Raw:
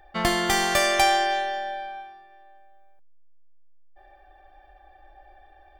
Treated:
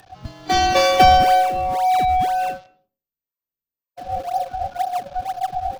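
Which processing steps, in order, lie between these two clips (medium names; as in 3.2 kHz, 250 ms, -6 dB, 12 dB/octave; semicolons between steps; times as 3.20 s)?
one-bit delta coder 32 kbps, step -23 dBFS; high-pass 99 Hz; spectral noise reduction 23 dB; graphic EQ with 31 bands 160 Hz +10 dB, 800 Hz +5 dB, 2 kHz -9 dB; frequency shift -43 Hz; in parallel at -10.5 dB: decimation with a swept rate 37×, swing 160% 2 Hz; on the sum: level rider gain up to 7 dB; on a send at -22.5 dB: reverberation RT60 0.40 s, pre-delay 120 ms; on the sum: trim +1 dB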